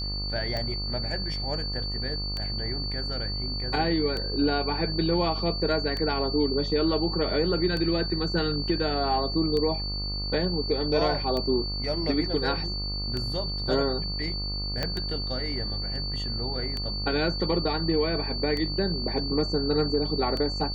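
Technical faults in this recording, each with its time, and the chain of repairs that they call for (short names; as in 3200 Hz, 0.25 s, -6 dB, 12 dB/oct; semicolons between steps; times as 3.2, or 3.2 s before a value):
buzz 50 Hz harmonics 27 -33 dBFS
tick 33 1/3 rpm -18 dBFS
tone 4500 Hz -32 dBFS
14.83 pop -14 dBFS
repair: de-click; de-hum 50 Hz, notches 27; notch 4500 Hz, Q 30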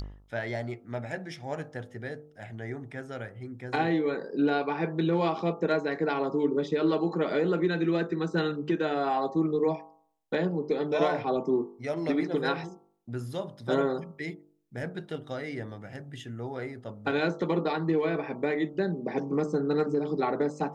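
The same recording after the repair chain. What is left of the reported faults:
14.83 pop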